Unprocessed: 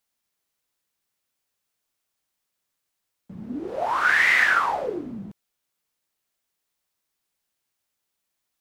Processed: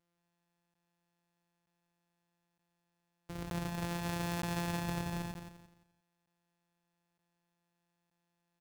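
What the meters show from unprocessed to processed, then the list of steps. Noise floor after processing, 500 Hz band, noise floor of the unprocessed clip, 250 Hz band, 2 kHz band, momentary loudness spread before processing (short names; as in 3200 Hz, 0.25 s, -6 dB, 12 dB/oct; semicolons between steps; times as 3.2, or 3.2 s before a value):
-84 dBFS, -12.0 dB, -80 dBFS, -3.5 dB, -25.0 dB, 19 LU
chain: sample sorter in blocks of 256 samples; reverse; compressor 12:1, threshold -30 dBFS, peak gain reduction 15.5 dB; reverse; feedback echo 0.173 s, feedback 31%, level -7 dB; crackling interface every 0.92 s, samples 512, zero, from 0.74; gain -3.5 dB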